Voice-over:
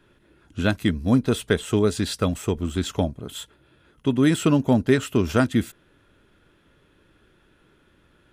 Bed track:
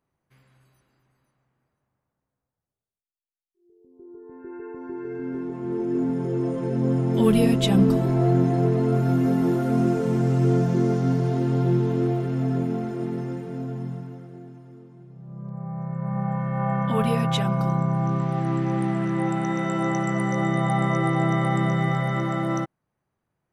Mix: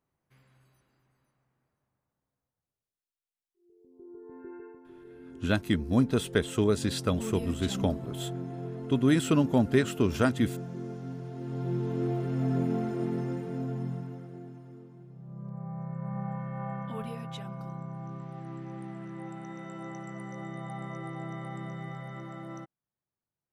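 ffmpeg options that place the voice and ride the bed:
-filter_complex "[0:a]adelay=4850,volume=-5dB[a];[1:a]volume=11dB,afade=t=out:st=4.39:d=0.42:silence=0.211349,afade=t=in:st=11.33:d=1.43:silence=0.188365,afade=t=out:st=14.72:d=2.43:silence=0.199526[b];[a][b]amix=inputs=2:normalize=0"

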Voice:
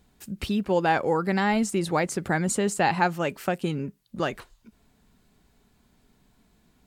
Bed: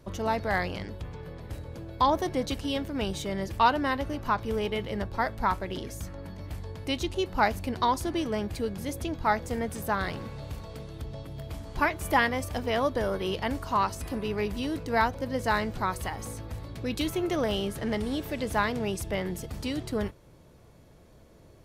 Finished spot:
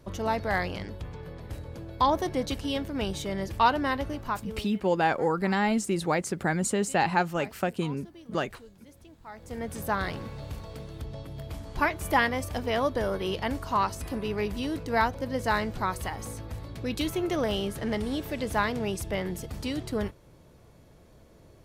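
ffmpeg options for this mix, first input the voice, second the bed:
-filter_complex "[0:a]adelay=4150,volume=-2dB[a];[1:a]volume=20dB,afade=t=out:st=4.05:d=0.65:silence=0.1,afade=t=in:st=9.32:d=0.49:silence=0.1[b];[a][b]amix=inputs=2:normalize=0"

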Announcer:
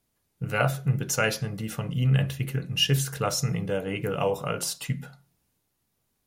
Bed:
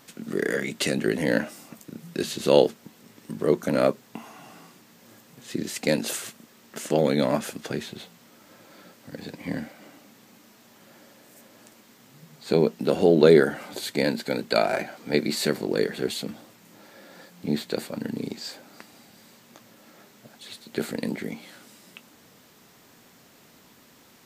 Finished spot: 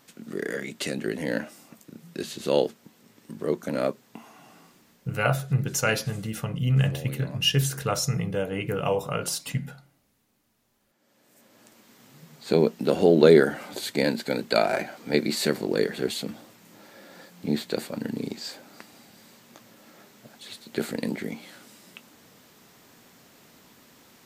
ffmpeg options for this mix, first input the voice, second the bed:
-filter_complex "[0:a]adelay=4650,volume=0.5dB[a];[1:a]volume=14.5dB,afade=t=out:st=4.88:d=0.36:silence=0.188365,afade=t=in:st=10.98:d=1.05:silence=0.105925[b];[a][b]amix=inputs=2:normalize=0"

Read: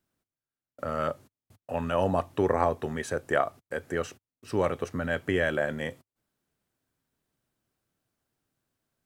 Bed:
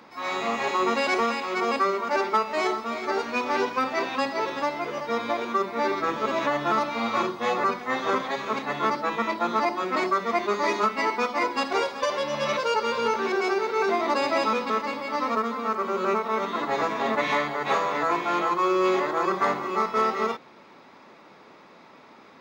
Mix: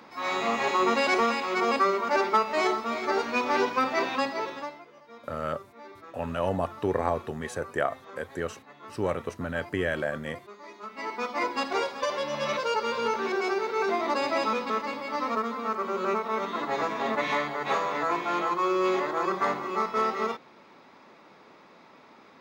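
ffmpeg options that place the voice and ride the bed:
-filter_complex "[0:a]adelay=4450,volume=-2dB[a];[1:a]volume=18.5dB,afade=t=out:st=4.09:d=0.76:silence=0.0841395,afade=t=in:st=10.8:d=0.65:silence=0.11885[b];[a][b]amix=inputs=2:normalize=0"

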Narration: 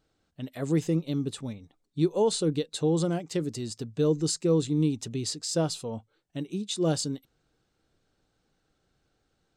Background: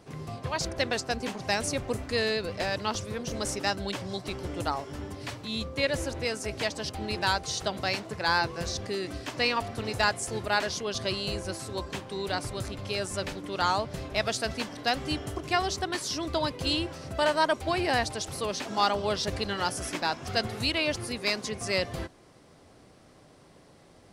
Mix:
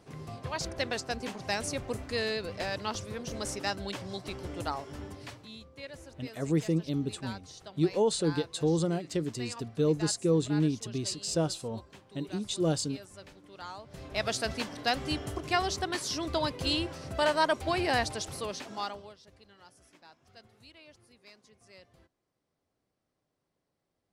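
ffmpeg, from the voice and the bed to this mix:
-filter_complex "[0:a]adelay=5800,volume=-2dB[a];[1:a]volume=11.5dB,afade=t=out:st=5.06:d=0.55:silence=0.223872,afade=t=in:st=13.83:d=0.49:silence=0.16788,afade=t=out:st=18.11:d=1.04:silence=0.0530884[b];[a][b]amix=inputs=2:normalize=0"

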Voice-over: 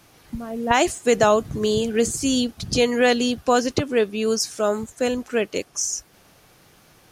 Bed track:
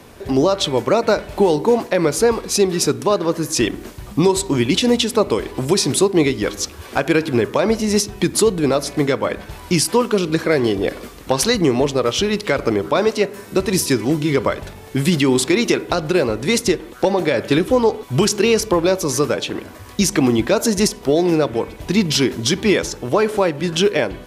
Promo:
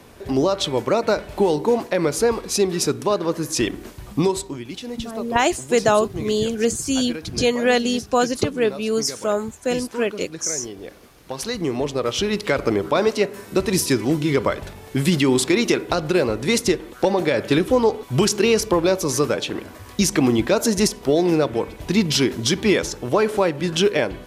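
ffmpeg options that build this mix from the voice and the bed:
-filter_complex "[0:a]adelay=4650,volume=0dB[a];[1:a]volume=11dB,afade=t=out:st=4.2:d=0.4:silence=0.223872,afade=t=in:st=11.16:d=1.33:silence=0.188365[b];[a][b]amix=inputs=2:normalize=0"

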